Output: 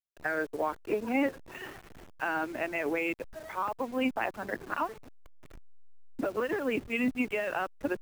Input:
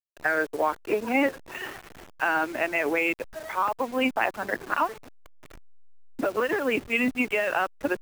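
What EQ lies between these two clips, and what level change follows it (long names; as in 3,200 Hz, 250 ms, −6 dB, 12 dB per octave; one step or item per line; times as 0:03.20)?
low-shelf EQ 390 Hz +7.5 dB
−8.0 dB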